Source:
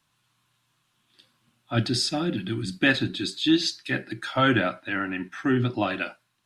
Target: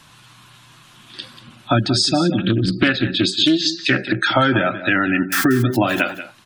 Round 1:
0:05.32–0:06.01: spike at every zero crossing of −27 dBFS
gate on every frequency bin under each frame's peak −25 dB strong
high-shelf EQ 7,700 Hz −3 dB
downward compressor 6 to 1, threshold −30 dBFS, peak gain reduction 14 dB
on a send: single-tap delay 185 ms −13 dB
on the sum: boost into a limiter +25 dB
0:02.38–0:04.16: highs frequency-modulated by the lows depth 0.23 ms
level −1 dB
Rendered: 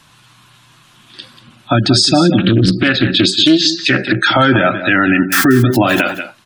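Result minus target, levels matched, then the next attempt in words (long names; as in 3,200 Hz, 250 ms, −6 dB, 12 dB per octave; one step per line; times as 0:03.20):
downward compressor: peak gain reduction −8 dB
0:05.32–0:06.01: spike at every zero crossing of −27 dBFS
gate on every frequency bin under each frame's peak −25 dB strong
high-shelf EQ 7,700 Hz −3 dB
downward compressor 6 to 1, threshold −39.5 dBFS, peak gain reduction 22 dB
on a send: single-tap delay 185 ms −13 dB
on the sum: boost into a limiter +25 dB
0:02.38–0:04.16: highs frequency-modulated by the lows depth 0.23 ms
level −1 dB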